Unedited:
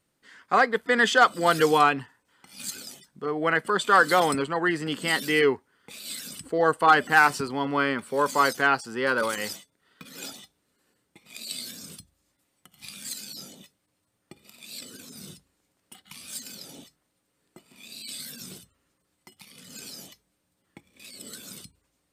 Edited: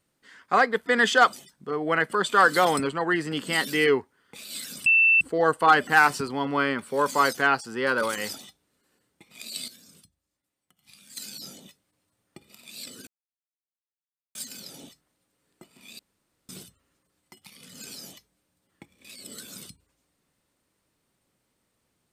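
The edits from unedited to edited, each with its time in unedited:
1.33–2.88 s: delete
6.41 s: add tone 2.67 kHz -15 dBFS 0.35 s
9.54–10.29 s: delete
11.63–13.12 s: gain -11.5 dB
15.02–16.30 s: mute
17.94–18.44 s: room tone

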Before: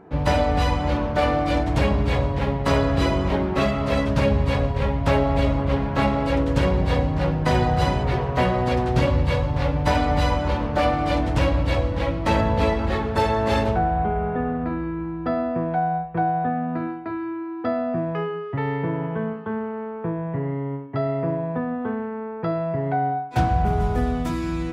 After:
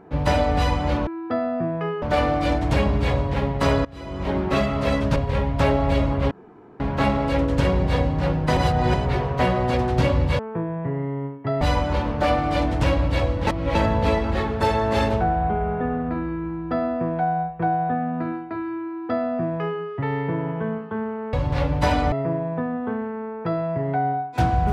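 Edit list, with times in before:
2.90–3.42 s: fade in quadratic, from -22.5 dB
4.21–4.63 s: delete
5.78 s: insert room tone 0.49 s
7.55–7.92 s: reverse
9.37–10.16 s: swap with 19.88–21.10 s
12.02–12.30 s: reverse
17.41–18.36 s: copy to 1.07 s

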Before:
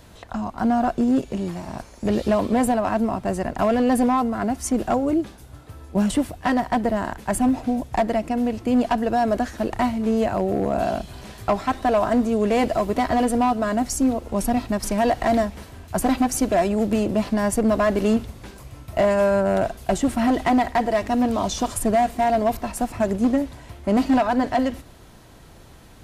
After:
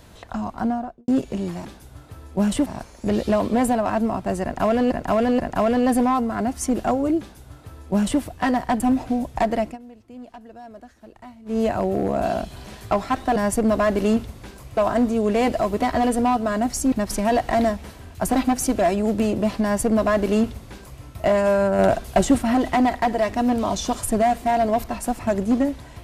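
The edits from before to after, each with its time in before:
0.48–1.08 s: studio fade out
3.42–3.90 s: loop, 3 plays
5.23–6.24 s: copy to 1.65 s
6.83–7.37 s: delete
8.21–10.16 s: dip -20.5 dB, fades 0.14 s
14.08–14.65 s: delete
17.36–18.77 s: copy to 11.93 s
19.52–20.11 s: gain +4 dB

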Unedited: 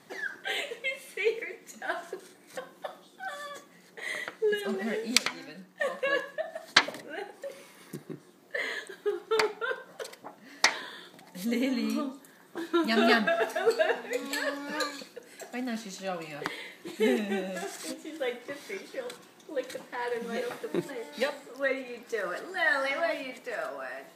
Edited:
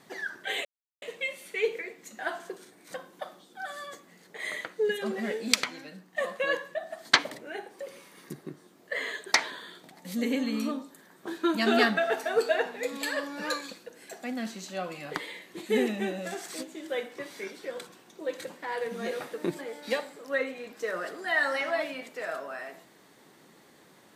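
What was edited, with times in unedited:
0.65 s: insert silence 0.37 s
8.95–10.62 s: delete

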